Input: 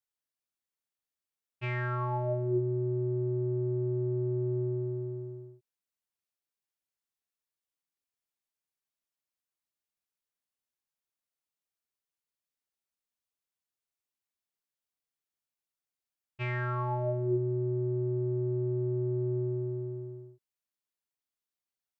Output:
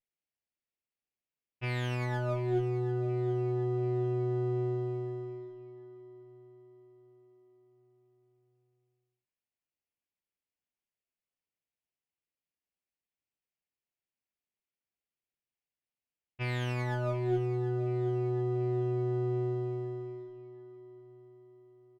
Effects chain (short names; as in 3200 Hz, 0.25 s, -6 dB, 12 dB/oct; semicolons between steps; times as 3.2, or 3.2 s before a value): minimum comb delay 0.38 ms; feedback echo 0.732 s, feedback 50%, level -15 dB; low-pass opened by the level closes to 3000 Hz, open at -32.5 dBFS